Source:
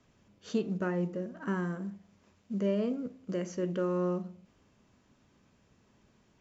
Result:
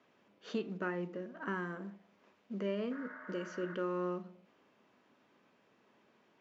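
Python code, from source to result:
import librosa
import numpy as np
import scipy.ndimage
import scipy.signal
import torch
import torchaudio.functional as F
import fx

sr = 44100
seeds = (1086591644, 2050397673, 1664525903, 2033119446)

y = fx.bandpass_edges(x, sr, low_hz=330.0, high_hz=3300.0)
y = fx.dynamic_eq(y, sr, hz=580.0, q=0.92, threshold_db=-47.0, ratio=4.0, max_db=-8)
y = fx.spec_repair(y, sr, seeds[0], start_s=2.94, length_s=0.78, low_hz=590.0, high_hz=2200.0, source='after')
y = y * 10.0 ** (2.0 / 20.0)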